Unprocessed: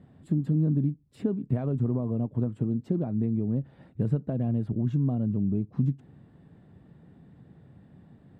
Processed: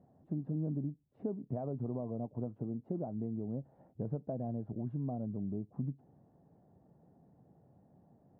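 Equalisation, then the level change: band-pass filter 730 Hz, Q 2.4; tilt EQ -4.5 dB/octave; -3.5 dB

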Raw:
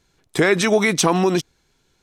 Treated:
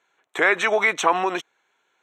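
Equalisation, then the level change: boxcar filter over 9 samples; high-pass 780 Hz 12 dB/octave; +4.5 dB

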